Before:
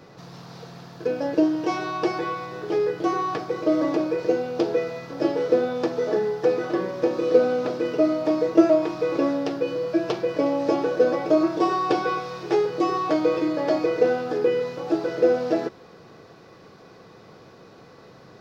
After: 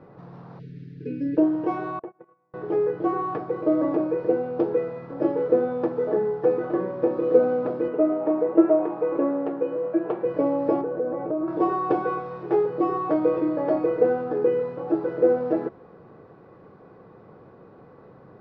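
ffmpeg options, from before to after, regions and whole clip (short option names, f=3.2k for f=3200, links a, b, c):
-filter_complex "[0:a]asettb=1/sr,asplit=3[a][b][c];[a]atrim=end=0.594[d];[b]atrim=start=0.59:end=1.37,asetpts=PTS-STARTPTS,afade=t=in:d=0.004:c=qsin,afade=t=out:st=0.776:d=0.004:c=qsin,asuperstop=centerf=880:order=8:qfactor=0.56,aecho=1:1:7.2:0.89,atrim=end_sample=34398[e];[c]atrim=start=1.366[f];[d][e]acrossfade=d=0.004:c1=hsin:c2=qsin[g];[g][f]acrossfade=d=0.004:c1=qsin:c2=hsin,asettb=1/sr,asplit=3[h][i][j];[h]atrim=end=1.994[k];[i]atrim=start=1.99:end=2.54,asetpts=PTS-STARTPTS,afade=t=in:d=0.004:c=qsin,afade=t=out:st=0.546:d=0.004:c=qsin,agate=range=-35dB:threshold=-24dB:ratio=16:release=100:detection=peak,highpass=130,lowpass=2.4k,acompressor=threshold=-33dB:ratio=6:attack=3.2:release=140:knee=1:detection=peak[l];[j]atrim=start=2.536[m];[k][l]acrossfade=d=0.004:c1=hsin:c2=qsin[n];[n][m]acrossfade=d=0.004:c1=qsin:c2=hsin,asettb=1/sr,asplit=3[o][p][q];[o]atrim=end=7.884[r];[p]atrim=start=7.88:end=10.25,asetpts=PTS-STARTPTS,afade=t=in:d=0.004:c=qsin,afade=t=out:st=2.366:d=0.004:c=qsin,highpass=210,lowpass=2.7k,asplit=6[s][t][u][v][w][x];[t]adelay=106,afreqshift=96,volume=-20.5dB[y];[u]adelay=212,afreqshift=192,volume=-25.2dB[z];[v]adelay=318,afreqshift=288,volume=-30dB[aa];[w]adelay=424,afreqshift=384,volume=-34.7dB[ab];[x]adelay=530,afreqshift=480,volume=-39.4dB[ac];[s][y][z][aa][ab][ac]amix=inputs=6:normalize=0,atrim=end_sample=104517[ad];[q]atrim=start=10.246[ae];[r][ad]acrossfade=d=0.004:c1=hsin:c2=qsin[af];[af][ae]acrossfade=d=0.004:c1=qsin:c2=hsin,asettb=1/sr,asplit=3[ag][ah][ai];[ag]atrim=end=10.814[aj];[ah]atrim=start=10.81:end=11.48,asetpts=PTS-STARTPTS,afade=t=in:d=0.004:c=qsin,afade=t=out:st=0.666:d=0.004:c=qsin,lowpass=f=1.2k:p=1,acompressor=threshold=-25dB:ratio=2.5:attack=3.2:release=140:knee=1:detection=peak[ak];[ai]atrim=start=11.476[al];[aj][ak]acrossfade=d=0.004:c1=hsin:c2=qsin[am];[am][al]acrossfade=d=0.004:c1=qsin:c2=hsin,lowpass=1.2k,bandreject=f=670:w=21"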